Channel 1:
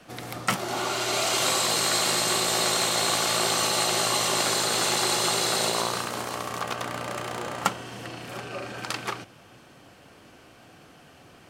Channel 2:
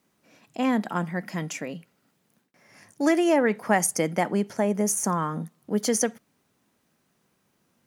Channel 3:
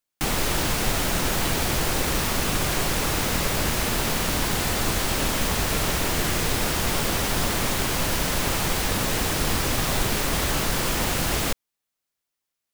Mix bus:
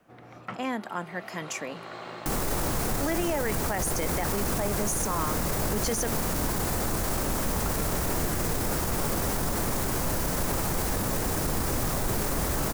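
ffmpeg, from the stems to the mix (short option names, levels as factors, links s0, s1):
-filter_complex "[0:a]lowpass=1800,volume=0.299[s0];[1:a]dynaudnorm=f=230:g=13:m=2.24,highpass=f=470:p=1,volume=0.668,asplit=2[s1][s2];[2:a]equalizer=f=3100:w=0.82:g=-11.5,adelay=2050,volume=0.944[s3];[s2]apad=whole_len=506883[s4];[s0][s4]sidechaincompress=threshold=0.0251:ratio=8:attack=16:release=814[s5];[s5][s1][s3]amix=inputs=3:normalize=0,alimiter=limit=0.119:level=0:latency=1:release=17"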